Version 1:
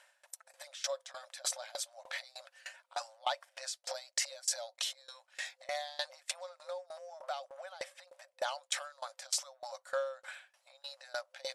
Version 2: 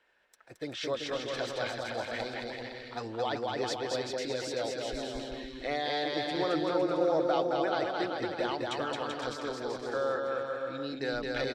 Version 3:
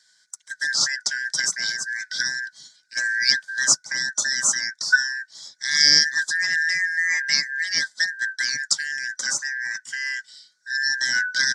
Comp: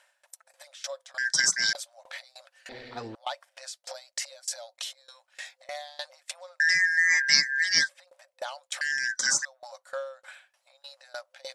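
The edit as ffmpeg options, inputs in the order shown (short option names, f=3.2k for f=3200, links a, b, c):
-filter_complex "[2:a]asplit=3[a][b][c];[0:a]asplit=5[d][e][f][g][h];[d]atrim=end=1.182[i];[a]atrim=start=1.178:end=1.732[j];[e]atrim=start=1.728:end=2.692[k];[1:a]atrim=start=2.688:end=3.152[l];[f]atrim=start=3.148:end=6.602[m];[b]atrim=start=6.598:end=7.892[n];[g]atrim=start=7.888:end=8.812[o];[c]atrim=start=8.808:end=9.452[p];[h]atrim=start=9.448[q];[i][j]acrossfade=d=0.004:c1=hsin:c2=hsin[r];[r][k]acrossfade=d=0.004:c1=hsin:c2=hsin[s];[s][l]acrossfade=d=0.004:c1=hsin:c2=hsin[t];[t][m]acrossfade=d=0.004:c1=hsin:c2=hsin[u];[u][n]acrossfade=d=0.004:c1=hsin:c2=hsin[v];[v][o]acrossfade=d=0.004:c1=hsin:c2=hsin[w];[w][p]acrossfade=d=0.004:c1=hsin:c2=hsin[x];[x][q]acrossfade=d=0.004:c1=hsin:c2=hsin"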